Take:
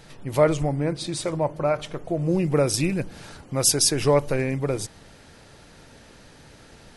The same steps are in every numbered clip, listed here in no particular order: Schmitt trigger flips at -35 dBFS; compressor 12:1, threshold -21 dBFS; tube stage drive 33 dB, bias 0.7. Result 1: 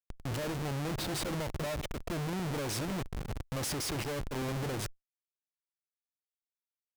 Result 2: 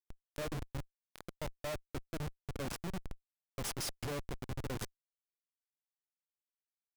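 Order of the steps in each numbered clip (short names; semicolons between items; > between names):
compressor > Schmitt trigger > tube stage; compressor > tube stage > Schmitt trigger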